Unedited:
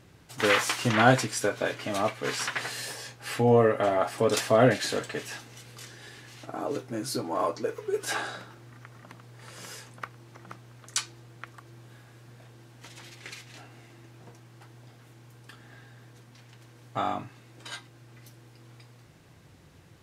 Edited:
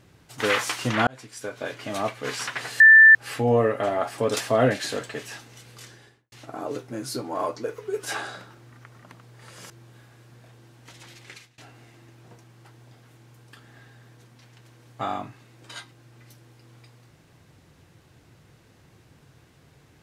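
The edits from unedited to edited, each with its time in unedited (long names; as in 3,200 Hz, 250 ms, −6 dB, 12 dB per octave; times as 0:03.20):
0:01.07–0:01.93: fade in
0:02.80–0:03.15: beep over 1,770 Hz −7.5 dBFS
0:05.85–0:06.32: fade out and dull
0:09.70–0:11.66: remove
0:13.22–0:13.54: fade out, to −22.5 dB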